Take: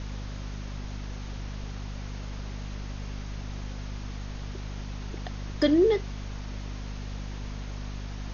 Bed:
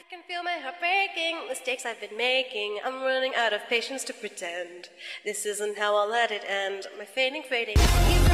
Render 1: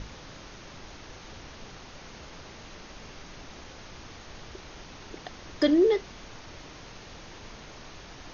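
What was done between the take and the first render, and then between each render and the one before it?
notches 50/100/150/200/250 Hz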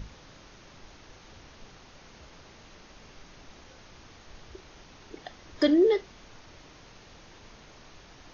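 noise print and reduce 6 dB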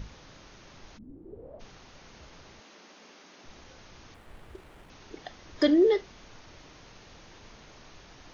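0.97–1.59 synth low-pass 210 Hz -> 650 Hz, resonance Q 9.8; 2.6–3.44 steep high-pass 200 Hz; 4.14–4.9 median filter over 9 samples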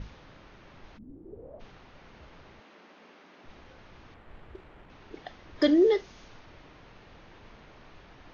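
low-pass opened by the level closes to 2300 Hz, open at -28.5 dBFS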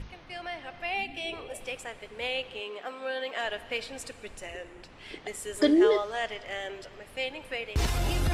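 add bed -7.5 dB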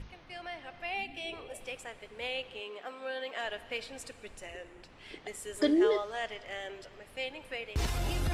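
gain -4.5 dB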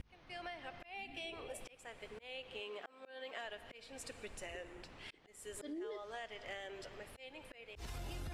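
auto swell 0.455 s; compressor 10:1, threshold -42 dBFS, peak gain reduction 14.5 dB

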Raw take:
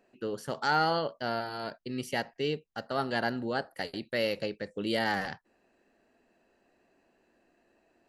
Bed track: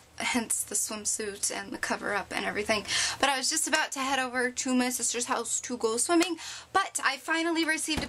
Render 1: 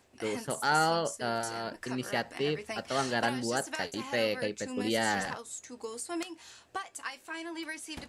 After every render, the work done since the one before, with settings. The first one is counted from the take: add bed track -12 dB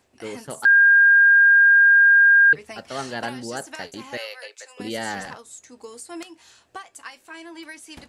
0.65–2.53 bleep 1610 Hz -10 dBFS; 4.17–4.8 Bessel high-pass 860 Hz, order 8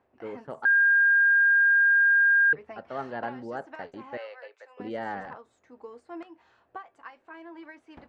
LPF 1200 Hz 12 dB/oct; low shelf 370 Hz -8 dB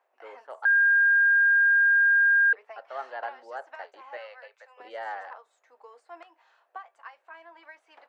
HPF 570 Hz 24 dB/oct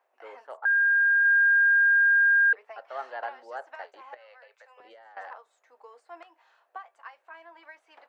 0.56–1.23 LPF 1700 Hz -> 2200 Hz; 4.14–5.17 compressor 16:1, threshold -48 dBFS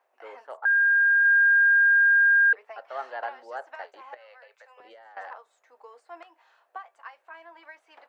gain +1.5 dB

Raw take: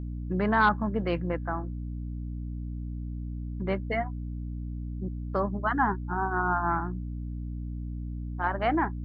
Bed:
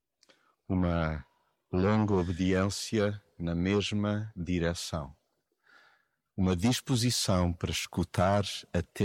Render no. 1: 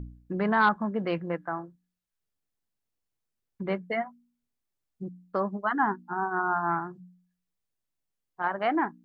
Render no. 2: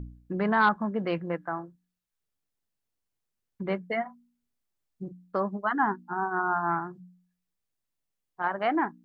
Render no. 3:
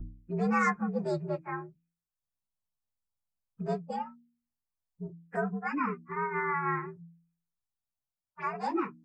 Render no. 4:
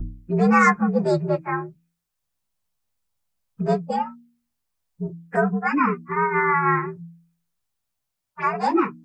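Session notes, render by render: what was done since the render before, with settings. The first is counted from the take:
de-hum 60 Hz, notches 5
4.02–5.13 doubler 34 ms -10 dB
inharmonic rescaling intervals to 120%; envelope phaser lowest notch 370 Hz, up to 3200 Hz, full sweep at -34 dBFS
gain +11 dB

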